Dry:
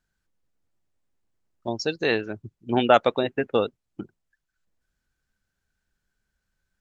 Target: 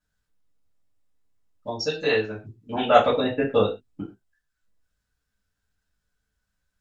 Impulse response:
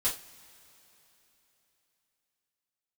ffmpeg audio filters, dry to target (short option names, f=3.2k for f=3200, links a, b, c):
-filter_complex "[0:a]asettb=1/sr,asplit=3[a][b][c];[a]atrim=end=2.944[d];[b]atrim=start=2.94:end=4.01,asetpts=PTS-STARTPTS,afade=t=in:d=0.004:c=qsin,afade=t=out:st=1.066:d=0.004:c=qsin,lowshelf=f=480:g=6.5[e];[c]atrim=start=4.006[f];[d][e]acrossfade=d=0.004:c1=hsin:c2=qsin[g];[g][f]acrossfade=d=0.004:c1=qsin:c2=hsin[h];[1:a]atrim=start_sample=2205,atrim=end_sample=6174[i];[h][i]afir=irnorm=-1:irlink=0,volume=-6dB"